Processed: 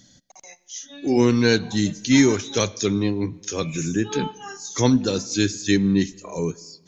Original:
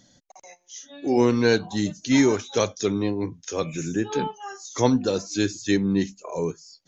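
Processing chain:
parametric band 700 Hz −8.5 dB 1.9 octaves
on a send: convolution reverb RT60 1.3 s, pre-delay 45 ms, DRR 22 dB
on the sum: level +5.5 dB

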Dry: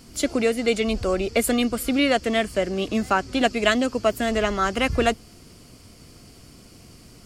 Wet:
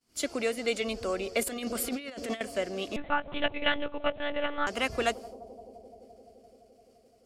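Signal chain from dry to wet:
downward expander −36 dBFS
low-shelf EQ 260 Hz −12 dB
bucket-brigade delay 171 ms, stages 1,024, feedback 83%, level −17 dB
0:01.41–0:02.41: compressor whose output falls as the input rises −28 dBFS, ratio −0.5
0:02.96–0:04.67: one-pitch LPC vocoder at 8 kHz 290 Hz
level −5.5 dB

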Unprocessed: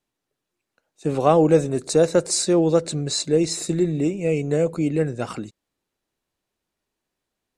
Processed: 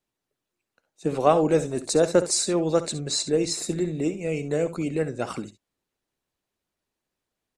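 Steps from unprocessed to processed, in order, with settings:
harmonic and percussive parts rebalanced harmonic −7 dB
ambience of single reflections 57 ms −17.5 dB, 68 ms −14.5 dB

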